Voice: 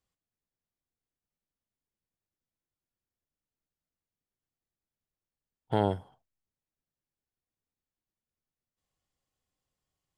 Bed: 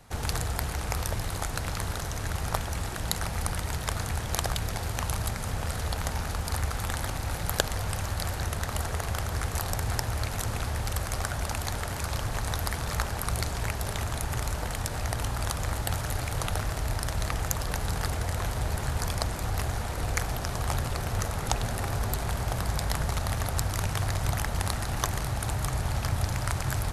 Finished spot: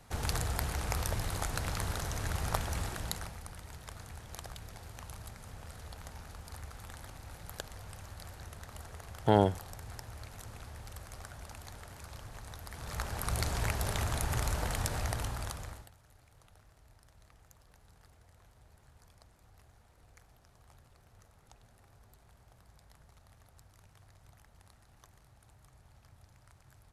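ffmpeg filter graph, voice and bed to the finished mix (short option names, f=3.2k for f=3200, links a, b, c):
-filter_complex "[0:a]adelay=3550,volume=2.5dB[a];[1:a]volume=11dB,afade=t=out:st=2.8:d=0.6:silence=0.223872,afade=t=in:st=12.68:d=0.86:silence=0.188365,afade=t=out:st=14.86:d=1.05:silence=0.0334965[b];[a][b]amix=inputs=2:normalize=0"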